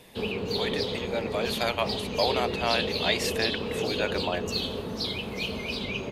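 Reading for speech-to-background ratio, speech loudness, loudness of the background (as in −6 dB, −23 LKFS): 0.5 dB, −30.0 LKFS, −30.5 LKFS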